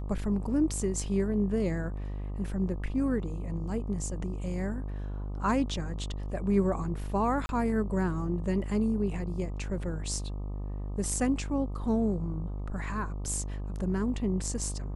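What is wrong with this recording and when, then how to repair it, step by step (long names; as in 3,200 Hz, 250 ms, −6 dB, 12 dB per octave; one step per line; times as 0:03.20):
mains buzz 50 Hz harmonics 25 −35 dBFS
0:07.46–0:07.49: drop-out 31 ms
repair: hum removal 50 Hz, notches 25
repair the gap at 0:07.46, 31 ms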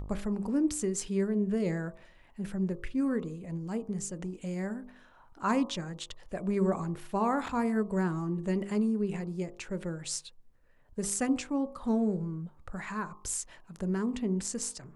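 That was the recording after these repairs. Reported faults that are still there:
none of them is left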